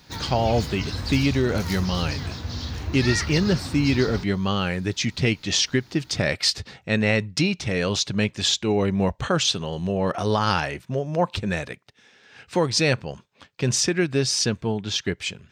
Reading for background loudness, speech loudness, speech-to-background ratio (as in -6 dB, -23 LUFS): -30.5 LUFS, -23.5 LUFS, 7.0 dB